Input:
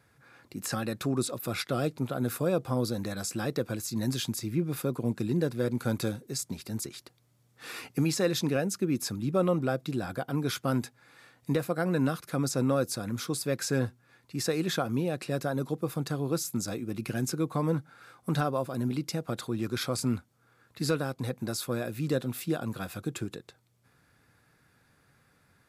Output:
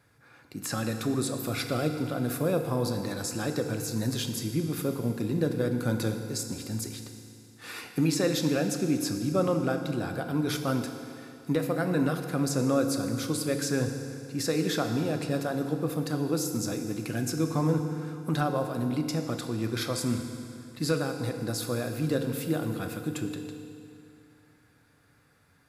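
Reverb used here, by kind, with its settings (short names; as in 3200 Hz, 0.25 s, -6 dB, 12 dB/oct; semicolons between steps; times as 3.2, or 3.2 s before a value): FDN reverb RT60 2.6 s, high-frequency decay 0.9×, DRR 5 dB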